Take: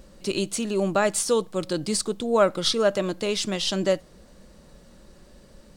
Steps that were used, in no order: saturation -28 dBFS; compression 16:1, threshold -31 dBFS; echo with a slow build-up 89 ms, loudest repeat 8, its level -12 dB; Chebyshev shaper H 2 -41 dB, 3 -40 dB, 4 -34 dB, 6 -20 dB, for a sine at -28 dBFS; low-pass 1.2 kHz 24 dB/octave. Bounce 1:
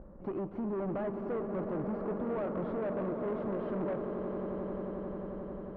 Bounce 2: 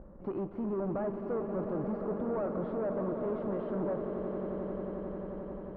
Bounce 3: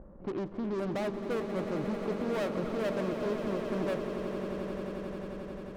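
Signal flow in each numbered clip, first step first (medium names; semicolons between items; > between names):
Chebyshev shaper > low-pass > compression > echo with a slow build-up > saturation; saturation > compression > echo with a slow build-up > Chebyshev shaper > low-pass; low-pass > saturation > Chebyshev shaper > compression > echo with a slow build-up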